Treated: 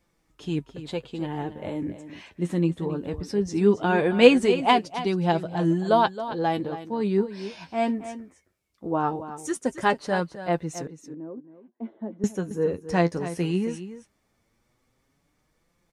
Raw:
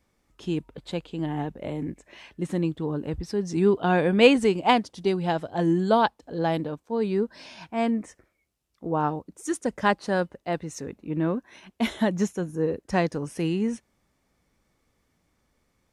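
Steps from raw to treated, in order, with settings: flange 0.19 Hz, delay 5.7 ms, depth 6.2 ms, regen +37%; 10.87–12.24 s: ladder band-pass 370 Hz, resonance 30%; on a send: delay 271 ms -12.5 dB; on the sum: trim +4 dB

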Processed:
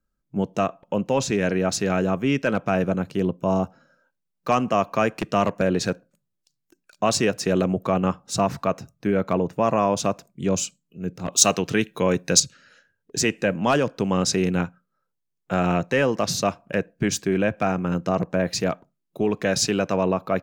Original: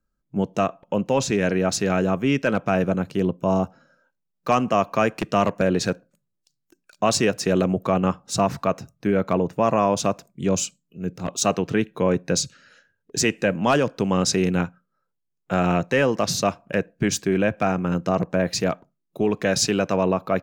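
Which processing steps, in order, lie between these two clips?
11.32–12.40 s: treble shelf 2.4 kHz +11 dB; trim -1 dB

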